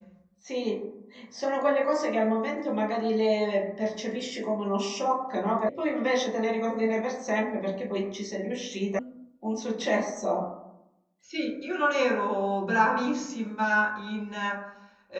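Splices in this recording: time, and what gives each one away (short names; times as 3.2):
5.69 sound cut off
8.99 sound cut off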